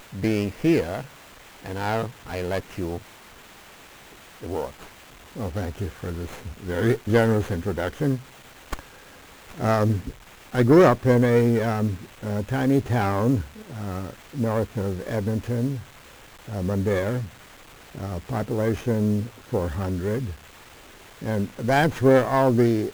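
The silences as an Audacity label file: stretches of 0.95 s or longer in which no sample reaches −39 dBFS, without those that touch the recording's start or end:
3.020000	4.120000	silence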